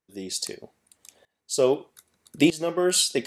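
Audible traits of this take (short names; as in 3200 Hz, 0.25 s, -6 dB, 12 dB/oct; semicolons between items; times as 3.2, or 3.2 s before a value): tremolo saw up 0.8 Hz, depth 90%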